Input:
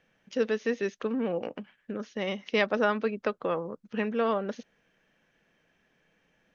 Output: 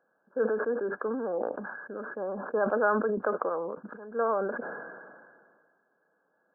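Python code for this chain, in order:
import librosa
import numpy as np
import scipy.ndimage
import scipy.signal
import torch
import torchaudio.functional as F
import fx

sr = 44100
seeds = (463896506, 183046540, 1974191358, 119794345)

y = fx.brickwall_lowpass(x, sr, high_hz=1700.0)
y = fx.auto_swell(y, sr, attack_ms=330.0, at=(3.48, 4.14), fade=0.02)
y = scipy.signal.sosfilt(scipy.signal.butter(2, 400.0, 'highpass', fs=sr, output='sos'), y)
y = fx.sustainer(y, sr, db_per_s=31.0)
y = F.gain(torch.from_numpy(y), 1.0).numpy()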